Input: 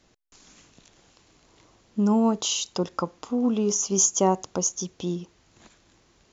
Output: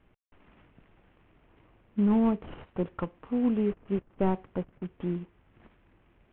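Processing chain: CVSD 16 kbps; tilt -2 dB/oct; gain -6 dB

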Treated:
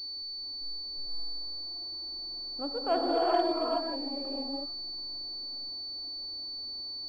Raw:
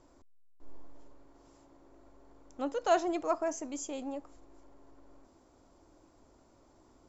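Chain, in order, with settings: air absorption 390 m; non-linear reverb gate 0.48 s rising, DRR -5 dB; pulse-width modulation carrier 4500 Hz; gain -1.5 dB

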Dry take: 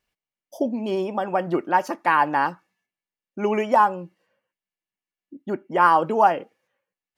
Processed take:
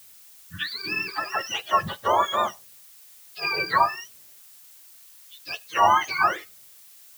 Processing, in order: spectrum mirrored in octaves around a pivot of 1000 Hz; added noise blue -50 dBFS

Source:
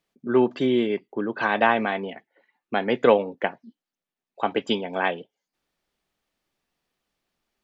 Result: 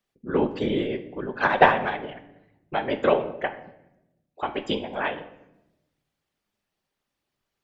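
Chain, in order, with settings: dynamic EQ 190 Hz, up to -5 dB, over -41 dBFS, Q 2.1; 1.39–2.09 transient shaper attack +12 dB, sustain -5 dB; whisperiser; on a send: reverb RT60 0.90 s, pre-delay 5 ms, DRR 9 dB; on the sum: gain -3 dB

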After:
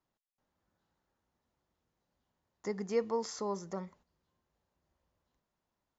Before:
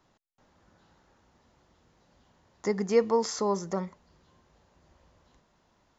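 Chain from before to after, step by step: gate -53 dBFS, range -10 dB; gain -8.5 dB

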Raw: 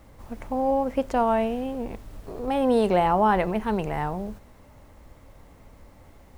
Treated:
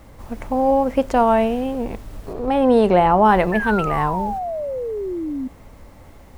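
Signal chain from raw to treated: 2.33–3.25 high shelf 4300 Hz -9 dB; 3.52–5.48 painted sound fall 250–1800 Hz -32 dBFS; gain +6.5 dB

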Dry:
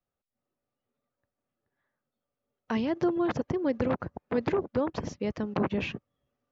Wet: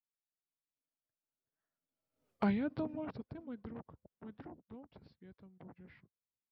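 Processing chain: Doppler pass-by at 2.3, 39 m/s, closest 2.8 m; overloaded stage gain 28.5 dB; formant shift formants -3 st; gain +6 dB

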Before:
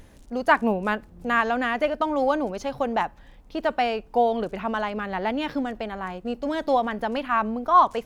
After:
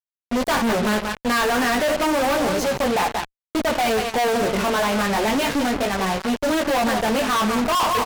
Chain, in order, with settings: tapped delay 58/181 ms -18/-12 dB; chorus 0.32 Hz, delay 15.5 ms, depth 4.9 ms; fuzz box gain 45 dB, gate -39 dBFS; gain -5 dB

